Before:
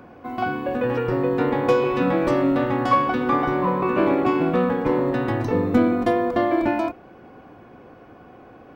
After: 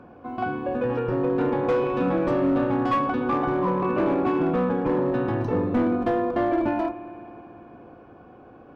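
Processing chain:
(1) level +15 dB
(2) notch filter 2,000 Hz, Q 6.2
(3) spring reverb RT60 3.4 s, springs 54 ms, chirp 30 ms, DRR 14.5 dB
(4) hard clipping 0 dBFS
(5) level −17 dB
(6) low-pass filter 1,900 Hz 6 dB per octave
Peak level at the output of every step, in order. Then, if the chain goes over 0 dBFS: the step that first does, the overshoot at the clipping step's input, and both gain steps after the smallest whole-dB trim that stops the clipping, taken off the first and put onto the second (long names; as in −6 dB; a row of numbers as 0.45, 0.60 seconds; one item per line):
+7.0, +7.5, +8.0, 0.0, −17.0, −17.0 dBFS
step 1, 8.0 dB
step 1 +7 dB, step 5 −9 dB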